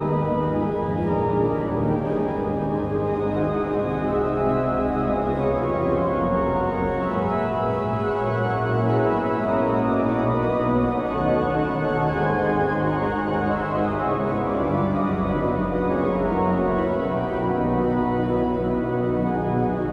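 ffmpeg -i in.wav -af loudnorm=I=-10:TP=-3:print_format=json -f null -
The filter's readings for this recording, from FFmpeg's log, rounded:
"input_i" : "-22.8",
"input_tp" : "-8.9",
"input_lra" : "1.5",
"input_thresh" : "-32.8",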